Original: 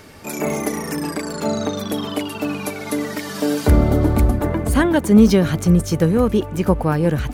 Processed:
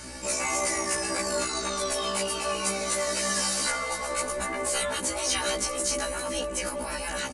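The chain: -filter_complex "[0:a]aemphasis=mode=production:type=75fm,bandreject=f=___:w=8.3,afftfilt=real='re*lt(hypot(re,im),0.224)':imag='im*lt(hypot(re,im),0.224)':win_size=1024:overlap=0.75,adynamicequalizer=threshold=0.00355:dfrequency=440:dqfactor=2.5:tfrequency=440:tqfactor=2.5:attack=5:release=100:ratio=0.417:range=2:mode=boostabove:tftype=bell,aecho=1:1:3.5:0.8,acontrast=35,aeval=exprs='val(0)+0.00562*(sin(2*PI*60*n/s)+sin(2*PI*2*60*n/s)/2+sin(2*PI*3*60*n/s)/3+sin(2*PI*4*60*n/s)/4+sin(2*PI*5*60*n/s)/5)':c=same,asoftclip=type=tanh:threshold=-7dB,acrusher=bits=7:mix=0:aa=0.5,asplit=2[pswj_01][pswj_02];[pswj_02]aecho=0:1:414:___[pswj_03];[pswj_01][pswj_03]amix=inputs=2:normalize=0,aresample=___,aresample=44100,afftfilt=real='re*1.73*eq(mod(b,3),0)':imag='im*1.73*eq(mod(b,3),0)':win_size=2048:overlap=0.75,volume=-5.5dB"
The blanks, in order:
3400, 0.0891, 22050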